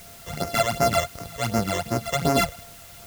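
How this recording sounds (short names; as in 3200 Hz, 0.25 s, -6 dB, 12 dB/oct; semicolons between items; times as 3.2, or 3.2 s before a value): a buzz of ramps at a fixed pitch in blocks of 64 samples; phasing stages 12, 2.7 Hz, lowest notch 240–3500 Hz; a quantiser's noise floor 8-bit, dither triangular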